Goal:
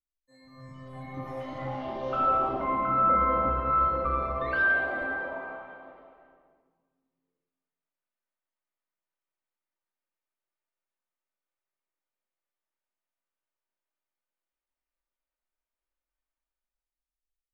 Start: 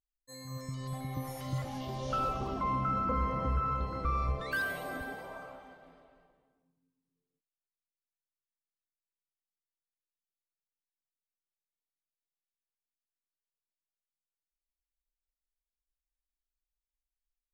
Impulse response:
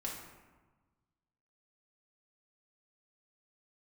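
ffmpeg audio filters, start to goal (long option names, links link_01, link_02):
-filter_complex "[0:a]acrossover=split=320|3500[link_01][link_02][link_03];[link_02]dynaudnorm=framelen=120:gausssize=17:maxgain=13.5dB[link_04];[link_01][link_04][link_03]amix=inputs=3:normalize=0,aemphasis=mode=reproduction:type=75fm[link_05];[1:a]atrim=start_sample=2205,asetrate=48510,aresample=44100[link_06];[link_05][link_06]afir=irnorm=-1:irlink=0,volume=-6dB"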